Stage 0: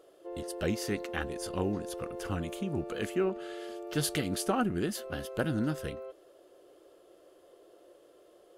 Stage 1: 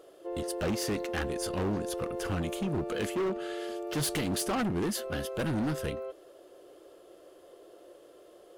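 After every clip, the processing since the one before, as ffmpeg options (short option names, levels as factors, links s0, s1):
-af "asoftclip=type=hard:threshold=0.0266,volume=1.68"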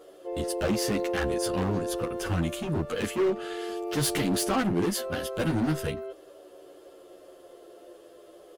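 -filter_complex "[0:a]asplit=2[s0][s1];[s1]adelay=10.5,afreqshift=-0.31[s2];[s0][s2]amix=inputs=2:normalize=1,volume=2.11"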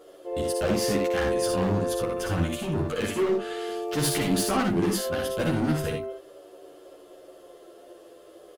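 -af "aecho=1:1:59|80:0.596|0.355"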